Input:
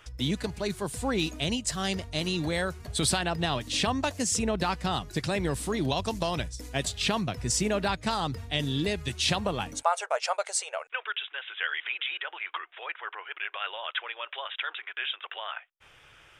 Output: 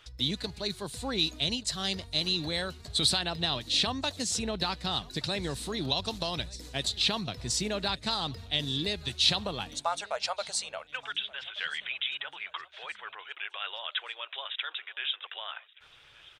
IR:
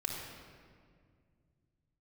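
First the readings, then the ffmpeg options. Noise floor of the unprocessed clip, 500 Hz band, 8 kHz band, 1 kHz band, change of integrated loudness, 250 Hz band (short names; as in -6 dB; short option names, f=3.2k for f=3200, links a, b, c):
-57 dBFS, -5.5 dB, -4.0 dB, -5.5 dB, -1.0 dB, -5.5 dB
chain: -af "equalizer=f=4k:w=2.4:g=13.5,aecho=1:1:1176|2352|3528:0.0668|0.0334|0.0167,volume=-5.5dB"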